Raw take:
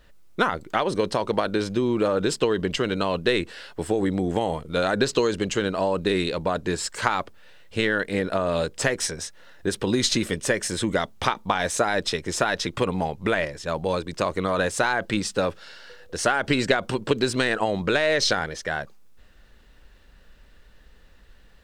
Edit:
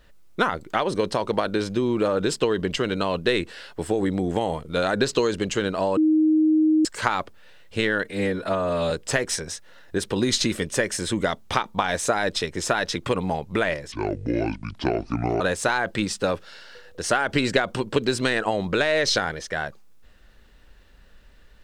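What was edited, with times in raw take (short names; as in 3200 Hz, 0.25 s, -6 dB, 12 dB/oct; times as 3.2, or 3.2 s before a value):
5.97–6.85 bleep 312 Hz -15 dBFS
8.04–8.62 stretch 1.5×
13.63–14.55 speed 62%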